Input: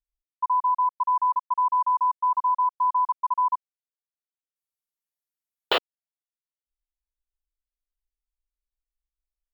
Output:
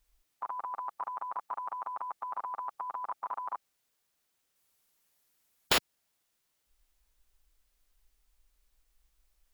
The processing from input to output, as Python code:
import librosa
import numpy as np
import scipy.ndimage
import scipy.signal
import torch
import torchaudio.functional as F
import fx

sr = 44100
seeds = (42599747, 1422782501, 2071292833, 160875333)

y = fx.spectral_comp(x, sr, ratio=4.0)
y = y * 10.0 ** (-1.5 / 20.0)